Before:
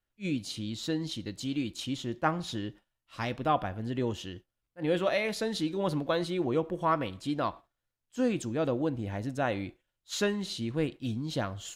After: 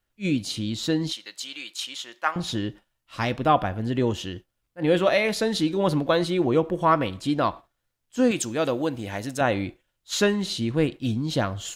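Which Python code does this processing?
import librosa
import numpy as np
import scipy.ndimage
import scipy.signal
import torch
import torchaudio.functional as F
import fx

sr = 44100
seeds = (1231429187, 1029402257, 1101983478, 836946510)

y = fx.highpass(x, sr, hz=1100.0, slope=12, at=(1.12, 2.36))
y = fx.tilt_eq(y, sr, slope=2.5, at=(8.31, 9.41))
y = F.gain(torch.from_numpy(y), 7.5).numpy()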